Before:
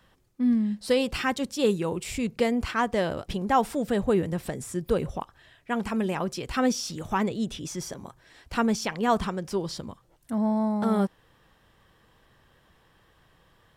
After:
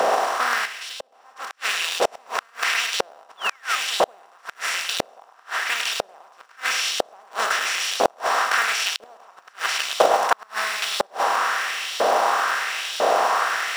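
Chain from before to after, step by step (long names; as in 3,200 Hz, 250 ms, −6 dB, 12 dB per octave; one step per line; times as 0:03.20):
compressor on every frequency bin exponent 0.2
in parallel at −9.5 dB: decimation without filtering 42×
on the sum: auto-filter high-pass saw up 1 Hz 550–3,800 Hz
parametric band 650 Hz +4 dB 0.37 octaves
on a send: feedback echo with a high-pass in the loop 103 ms, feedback 35%, high-pass 420 Hz, level −6 dB
0:03.37–0:03.76: on the sum: sound drawn into the spectrogram fall 1,200–3,600 Hz −21 dBFS
gate with flip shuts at −4 dBFS, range −34 dB
0:00.65–0:01.62: downward compressor 10 to 1, threshold −29 dBFS, peak gain reduction 16.5 dB
0:09.64–0:10.46: transient designer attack +8 dB, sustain 0 dB
level −2 dB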